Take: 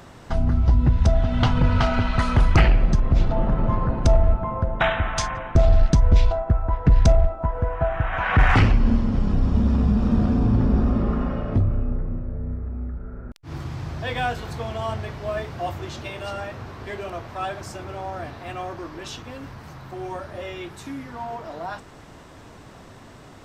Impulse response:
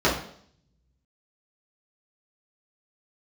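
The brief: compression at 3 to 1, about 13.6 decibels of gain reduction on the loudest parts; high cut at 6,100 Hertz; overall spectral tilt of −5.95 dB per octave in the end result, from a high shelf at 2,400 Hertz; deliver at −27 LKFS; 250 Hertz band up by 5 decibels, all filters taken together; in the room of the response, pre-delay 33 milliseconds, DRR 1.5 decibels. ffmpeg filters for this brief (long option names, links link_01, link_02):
-filter_complex "[0:a]lowpass=6100,equalizer=frequency=250:width_type=o:gain=6,highshelf=frequency=2400:gain=4.5,acompressor=threshold=-30dB:ratio=3,asplit=2[link_01][link_02];[1:a]atrim=start_sample=2205,adelay=33[link_03];[link_02][link_03]afir=irnorm=-1:irlink=0,volume=-19.5dB[link_04];[link_01][link_04]amix=inputs=2:normalize=0,volume=1dB"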